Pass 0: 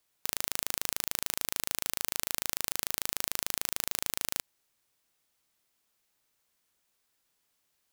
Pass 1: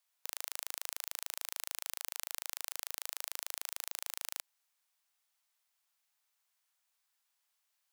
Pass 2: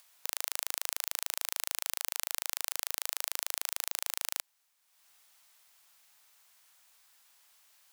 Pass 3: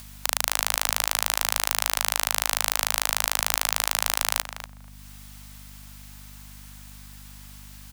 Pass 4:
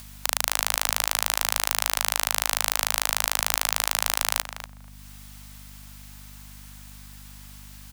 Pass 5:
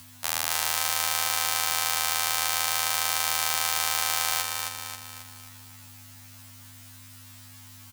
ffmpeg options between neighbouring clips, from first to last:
-af "highpass=f=690:w=0.5412,highpass=f=690:w=1.3066,alimiter=limit=-7dB:level=0:latency=1:release=29,volume=-4.5dB"
-af "acompressor=mode=upward:threshold=-59dB:ratio=2.5,volume=6dB"
-filter_complex "[0:a]asplit=2[a][b];[b]adelay=241,lowpass=f=1.1k:p=1,volume=-5dB,asplit=2[c][d];[d]adelay=241,lowpass=f=1.1k:p=1,volume=0.17,asplit=2[e][f];[f]adelay=241,lowpass=f=1.1k:p=1,volume=0.17[g];[a][c][e][g]amix=inputs=4:normalize=0,apsyclip=17dB,aeval=exprs='val(0)+0.00708*(sin(2*PI*50*n/s)+sin(2*PI*2*50*n/s)/2+sin(2*PI*3*50*n/s)/3+sin(2*PI*4*50*n/s)/4+sin(2*PI*5*50*n/s)/5)':c=same,volume=-1.5dB"
-af anull
-filter_complex "[0:a]asplit=2[a][b];[b]aecho=0:1:269|538|807|1076|1345|1614:0.562|0.287|0.146|0.0746|0.038|0.0194[c];[a][c]amix=inputs=2:normalize=0,afftfilt=real='re*2*eq(mod(b,4),0)':imag='im*2*eq(mod(b,4),0)':win_size=2048:overlap=0.75"

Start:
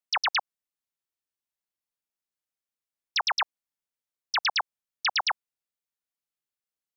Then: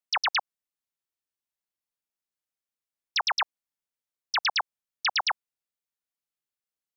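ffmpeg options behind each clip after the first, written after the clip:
-af anull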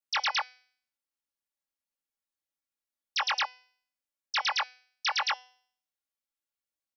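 -af "aecho=1:1:3.6:0.87,flanger=delay=19.5:depth=2.4:speed=1.9,bandreject=f=251.1:t=h:w=4,bandreject=f=502.2:t=h:w=4,bandreject=f=753.3:t=h:w=4,bandreject=f=1.0044k:t=h:w=4,bandreject=f=1.2555k:t=h:w=4,bandreject=f=1.5066k:t=h:w=4,bandreject=f=1.7577k:t=h:w=4,bandreject=f=2.0088k:t=h:w=4,bandreject=f=2.2599k:t=h:w=4,bandreject=f=2.511k:t=h:w=4,bandreject=f=2.7621k:t=h:w=4,bandreject=f=3.0132k:t=h:w=4,bandreject=f=3.2643k:t=h:w=4,bandreject=f=3.5154k:t=h:w=4,bandreject=f=3.7665k:t=h:w=4,bandreject=f=4.0176k:t=h:w=4,bandreject=f=4.2687k:t=h:w=4,bandreject=f=4.5198k:t=h:w=4,bandreject=f=4.7709k:t=h:w=4,bandreject=f=5.022k:t=h:w=4,bandreject=f=5.2731k:t=h:w=4,bandreject=f=5.5242k:t=h:w=4,bandreject=f=5.7753k:t=h:w=4,bandreject=f=6.0264k:t=h:w=4,bandreject=f=6.2775k:t=h:w=4,bandreject=f=6.5286k:t=h:w=4,bandreject=f=6.7797k:t=h:w=4,bandreject=f=7.0308k:t=h:w=4,bandreject=f=7.2819k:t=h:w=4,bandreject=f=7.533k:t=h:w=4,bandreject=f=7.7841k:t=h:w=4,bandreject=f=8.0352k:t=h:w=4,bandreject=f=8.2863k:t=h:w=4,bandreject=f=8.5374k:t=h:w=4,bandreject=f=8.7885k:t=h:w=4,bandreject=f=9.0396k:t=h:w=4,bandreject=f=9.2907k:t=h:w=4,bandreject=f=9.5418k:t=h:w=4,bandreject=f=9.7929k:t=h:w=4,volume=-1.5dB"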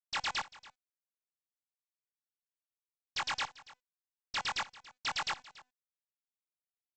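-af "adynamicsmooth=sensitivity=6:basefreq=1.8k,aresample=16000,acrusher=bits=6:dc=4:mix=0:aa=0.000001,aresample=44100,aecho=1:1:283:0.106,volume=-6.5dB"

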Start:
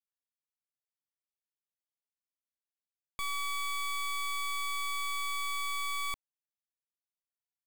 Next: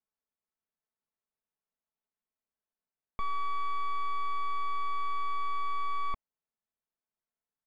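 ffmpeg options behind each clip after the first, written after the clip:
-af "lowpass=1.4k,aecho=1:1:4.6:0.46,volume=5dB"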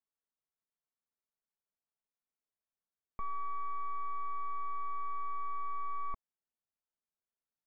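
-af "lowpass=f=1.9k:w=0.5412,lowpass=f=1.9k:w=1.3066,volume=-5dB"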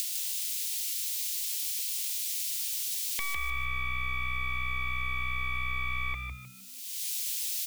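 -filter_complex "[0:a]acompressor=mode=upward:threshold=-44dB:ratio=2.5,aexciter=amount=14.6:drive=9.9:freq=2.1k,asplit=5[a][b][c][d][e];[b]adelay=154,afreqshift=63,volume=-5.5dB[f];[c]adelay=308,afreqshift=126,volume=-15.1dB[g];[d]adelay=462,afreqshift=189,volume=-24.8dB[h];[e]adelay=616,afreqshift=252,volume=-34.4dB[i];[a][f][g][h][i]amix=inputs=5:normalize=0"

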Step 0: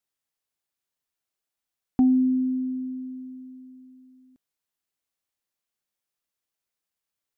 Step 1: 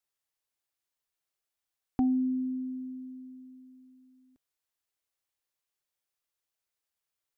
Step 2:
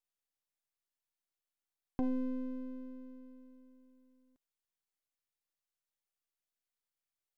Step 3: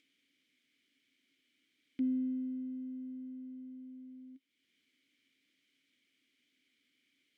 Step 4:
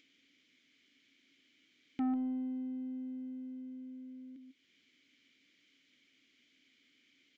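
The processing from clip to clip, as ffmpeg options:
-af "equalizer=f=210:w=1.9:g=-9.5,volume=-1.5dB"
-af "aeval=exprs='if(lt(val(0),0),0.251*val(0),val(0))':c=same,volume=-4dB"
-filter_complex "[0:a]acompressor=mode=upward:threshold=-36dB:ratio=2.5,asplit=3[a][b][c];[a]bandpass=f=270:t=q:w=8,volume=0dB[d];[b]bandpass=f=2.29k:t=q:w=8,volume=-6dB[e];[c]bandpass=f=3.01k:t=q:w=8,volume=-9dB[f];[d][e][f]amix=inputs=3:normalize=0,volume=4dB"
-af "aecho=1:1:146:0.355,aresample=16000,asoftclip=type=tanh:threshold=-36.5dB,aresample=44100,volume=6.5dB"

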